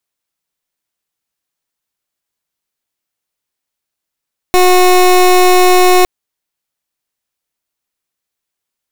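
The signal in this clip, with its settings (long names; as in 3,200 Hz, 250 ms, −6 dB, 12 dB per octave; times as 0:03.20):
pulse wave 364 Hz, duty 23% −7 dBFS 1.51 s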